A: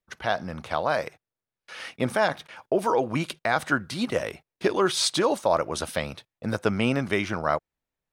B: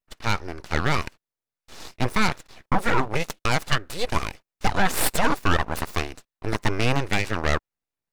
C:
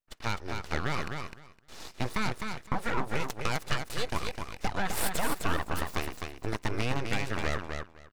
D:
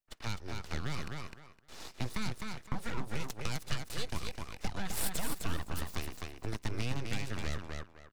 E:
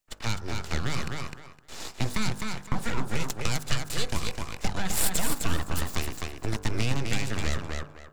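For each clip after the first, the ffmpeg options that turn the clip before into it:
ffmpeg -i in.wav -af "aeval=exprs='abs(val(0))':channel_layout=same,bandreject=frequency=3200:width=21,aeval=exprs='0.376*(cos(1*acos(clip(val(0)/0.376,-1,1)))-cos(1*PI/2))+0.106*(cos(6*acos(clip(val(0)/0.376,-1,1)))-cos(6*PI/2))':channel_layout=same,volume=-2dB" out.wav
ffmpeg -i in.wav -filter_complex "[0:a]acompressor=threshold=-23dB:ratio=2.5,asplit=2[link_01][link_02];[link_02]aecho=0:1:256|512|768:0.531|0.0849|0.0136[link_03];[link_01][link_03]amix=inputs=2:normalize=0,volume=-4dB" out.wav
ffmpeg -i in.wav -filter_complex "[0:a]acrossover=split=260|3000[link_01][link_02][link_03];[link_02]acompressor=threshold=-42dB:ratio=3[link_04];[link_01][link_04][link_03]amix=inputs=3:normalize=0,volume=-2.5dB" out.wav
ffmpeg -i in.wav -af "equalizer=frequency=7300:width_type=o:width=0.24:gain=5.5,bandreject=frequency=49.55:width_type=h:width=4,bandreject=frequency=99.1:width_type=h:width=4,bandreject=frequency=148.65:width_type=h:width=4,bandreject=frequency=198.2:width_type=h:width=4,bandreject=frequency=247.75:width_type=h:width=4,bandreject=frequency=297.3:width_type=h:width=4,bandreject=frequency=346.85:width_type=h:width=4,bandreject=frequency=396.4:width_type=h:width=4,bandreject=frequency=445.95:width_type=h:width=4,bandreject=frequency=495.5:width_type=h:width=4,bandreject=frequency=545.05:width_type=h:width=4,bandreject=frequency=594.6:width_type=h:width=4,bandreject=frequency=644.15:width_type=h:width=4,bandreject=frequency=693.7:width_type=h:width=4,bandreject=frequency=743.25:width_type=h:width=4,bandreject=frequency=792.8:width_type=h:width=4,bandreject=frequency=842.35:width_type=h:width=4,bandreject=frequency=891.9:width_type=h:width=4,bandreject=frequency=941.45:width_type=h:width=4,bandreject=frequency=991:width_type=h:width=4,bandreject=frequency=1040.55:width_type=h:width=4,bandreject=frequency=1090.1:width_type=h:width=4,bandreject=frequency=1139.65:width_type=h:width=4,bandreject=frequency=1189.2:width_type=h:width=4,bandreject=frequency=1238.75:width_type=h:width=4,bandreject=frequency=1288.3:width_type=h:width=4,bandreject=frequency=1337.85:width_type=h:width=4,bandreject=frequency=1387.4:width_type=h:width=4,bandreject=frequency=1436.95:width_type=h:width=4,bandreject=frequency=1486.5:width_type=h:width=4,bandreject=frequency=1536.05:width_type=h:width=4,bandreject=frequency=1585.6:width_type=h:width=4,bandreject=frequency=1635.15:width_type=h:width=4,bandreject=frequency=1684.7:width_type=h:width=4,bandreject=frequency=1734.25:width_type=h:width=4,volume=8.5dB" out.wav

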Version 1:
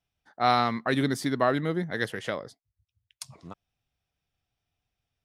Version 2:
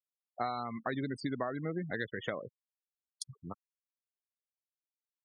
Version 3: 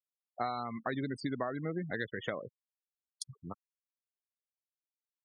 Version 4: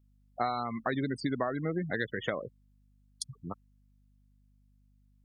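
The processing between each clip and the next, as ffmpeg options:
ffmpeg -i in.wav -af "acompressor=threshold=-31dB:ratio=16,afftfilt=real='re*gte(hypot(re,im),0.0158)':imag='im*gte(hypot(re,im),0.0158)':win_size=1024:overlap=0.75" out.wav
ffmpeg -i in.wav -af anull out.wav
ffmpeg -i in.wav -af "aeval=exprs='val(0)+0.000398*(sin(2*PI*50*n/s)+sin(2*PI*2*50*n/s)/2+sin(2*PI*3*50*n/s)/3+sin(2*PI*4*50*n/s)/4+sin(2*PI*5*50*n/s)/5)':channel_layout=same,volume=4dB" out.wav

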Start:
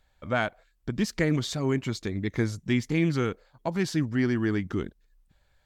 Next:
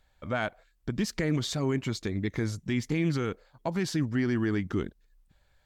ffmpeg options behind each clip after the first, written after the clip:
ffmpeg -i in.wav -af "alimiter=limit=-18dB:level=0:latency=1:release=47" out.wav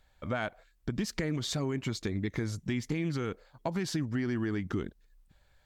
ffmpeg -i in.wav -af "acompressor=threshold=-29dB:ratio=6,volume=1dB" out.wav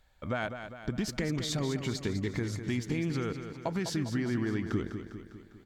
ffmpeg -i in.wav -af "aecho=1:1:201|402|603|804|1005|1206|1407:0.355|0.199|0.111|0.0623|0.0349|0.0195|0.0109" out.wav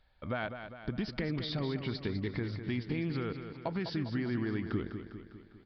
ffmpeg -i in.wav -af "aresample=11025,aresample=44100,volume=-2.5dB" out.wav

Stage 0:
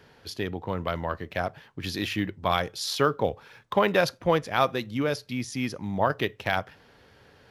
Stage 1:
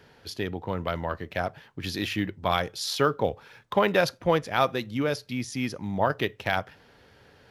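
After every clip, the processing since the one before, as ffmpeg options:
ffmpeg -i in.wav -af "bandreject=frequency=1100:width=24" out.wav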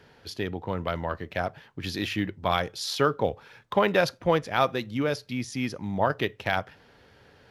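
ffmpeg -i in.wav -af "highshelf=frequency=8700:gain=-4.5" out.wav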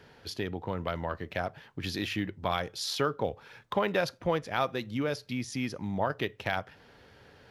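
ffmpeg -i in.wav -af "acompressor=threshold=-34dB:ratio=1.5" out.wav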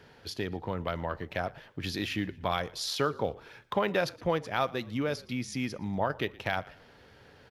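ffmpeg -i in.wav -filter_complex "[0:a]asplit=4[link_01][link_02][link_03][link_04];[link_02]adelay=117,afreqshift=-43,volume=-22.5dB[link_05];[link_03]adelay=234,afreqshift=-86,volume=-30.5dB[link_06];[link_04]adelay=351,afreqshift=-129,volume=-38.4dB[link_07];[link_01][link_05][link_06][link_07]amix=inputs=4:normalize=0" out.wav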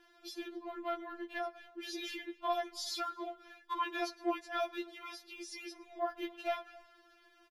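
ffmpeg -i in.wav -filter_complex "[0:a]asplit=2[link_01][link_02];[link_02]adelay=270,highpass=300,lowpass=3400,asoftclip=type=hard:threshold=-22dB,volume=-23dB[link_03];[link_01][link_03]amix=inputs=2:normalize=0,afftfilt=real='re*4*eq(mod(b,16),0)':imag='im*4*eq(mod(b,16),0)':win_size=2048:overlap=0.75,volume=-3.5dB" out.wav

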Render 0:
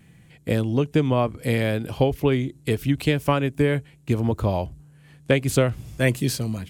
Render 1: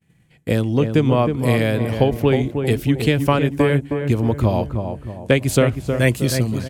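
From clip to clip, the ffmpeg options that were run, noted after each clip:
ffmpeg -i in.wav -filter_complex "[0:a]asplit=2[link_01][link_02];[link_02]adelay=315,lowpass=frequency=1500:poles=1,volume=-6dB,asplit=2[link_03][link_04];[link_04]adelay=315,lowpass=frequency=1500:poles=1,volume=0.43,asplit=2[link_05][link_06];[link_06]adelay=315,lowpass=frequency=1500:poles=1,volume=0.43,asplit=2[link_07][link_08];[link_08]adelay=315,lowpass=frequency=1500:poles=1,volume=0.43,asplit=2[link_09][link_10];[link_10]adelay=315,lowpass=frequency=1500:poles=1,volume=0.43[link_11];[link_01][link_03][link_05][link_07][link_09][link_11]amix=inputs=6:normalize=0,agate=range=-33dB:threshold=-43dB:ratio=3:detection=peak,volume=3.5dB" out.wav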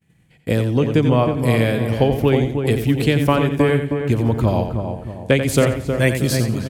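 ffmpeg -i in.wav -af "aecho=1:1:88|176|264:0.376|0.0902|0.0216" out.wav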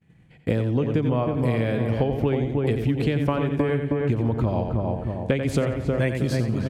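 ffmpeg -i in.wav -af "aemphasis=mode=reproduction:type=75kf,acompressor=threshold=-22dB:ratio=6,volume=2.5dB" out.wav

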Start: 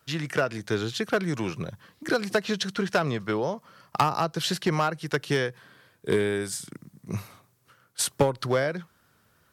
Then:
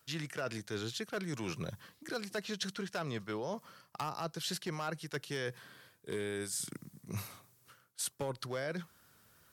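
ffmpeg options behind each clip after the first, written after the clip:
ffmpeg -i in.wav -af "highshelf=frequency=3900:gain=8,areverse,acompressor=threshold=-32dB:ratio=6,areverse,volume=-3.5dB" out.wav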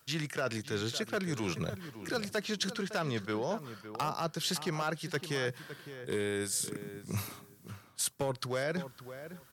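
ffmpeg -i in.wav -filter_complex "[0:a]asplit=2[link_01][link_02];[link_02]adelay=559,lowpass=frequency=2100:poles=1,volume=-11.5dB,asplit=2[link_03][link_04];[link_04]adelay=559,lowpass=frequency=2100:poles=1,volume=0.17[link_05];[link_01][link_03][link_05]amix=inputs=3:normalize=0,volume=4.5dB" out.wav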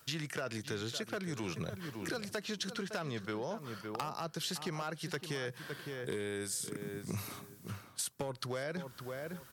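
ffmpeg -i in.wav -af "acompressor=threshold=-39dB:ratio=6,volume=3.5dB" out.wav

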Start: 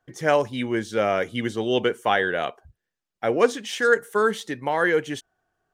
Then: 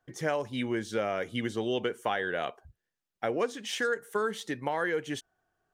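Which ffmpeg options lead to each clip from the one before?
ffmpeg -i in.wav -af "acompressor=threshold=-24dB:ratio=4,volume=-3dB" out.wav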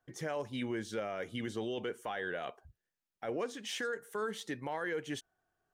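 ffmpeg -i in.wav -af "alimiter=limit=-24dB:level=0:latency=1:release=10,volume=-4dB" out.wav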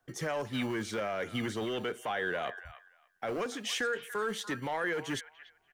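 ffmpeg -i in.wav -filter_complex "[0:a]acrossover=split=190|870|3200[link_01][link_02][link_03][link_04];[link_01]acrusher=samples=30:mix=1:aa=0.000001[link_05];[link_02]asoftclip=type=hard:threshold=-39dB[link_06];[link_03]aecho=1:1:290|580|870:0.316|0.0569|0.0102[link_07];[link_05][link_06][link_07][link_04]amix=inputs=4:normalize=0,volume=5.5dB" out.wav

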